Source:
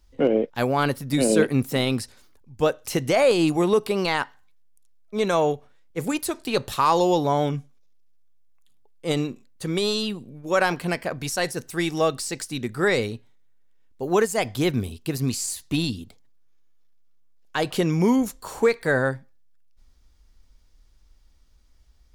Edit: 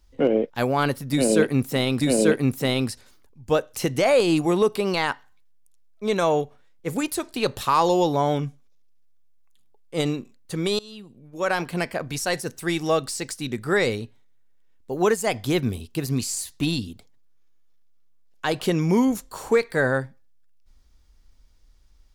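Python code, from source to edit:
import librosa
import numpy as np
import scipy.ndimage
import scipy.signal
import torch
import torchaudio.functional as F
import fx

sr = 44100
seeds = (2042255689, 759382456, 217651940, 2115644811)

y = fx.edit(x, sr, fx.repeat(start_s=1.12, length_s=0.89, count=2),
    fx.fade_in_from(start_s=9.9, length_s=1.04, floor_db=-23.5), tone=tone)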